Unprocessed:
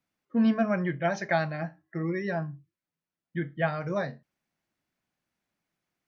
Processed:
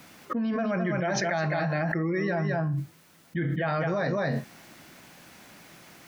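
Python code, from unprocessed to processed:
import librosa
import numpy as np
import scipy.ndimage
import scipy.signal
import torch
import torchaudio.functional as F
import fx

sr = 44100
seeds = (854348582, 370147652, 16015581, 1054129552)

p1 = fx.low_shelf(x, sr, hz=65.0, db=-10.5)
p2 = p1 + fx.echo_single(p1, sr, ms=211, db=-8.5, dry=0)
p3 = fx.env_flatten(p2, sr, amount_pct=100)
y = p3 * librosa.db_to_amplitude(-6.5)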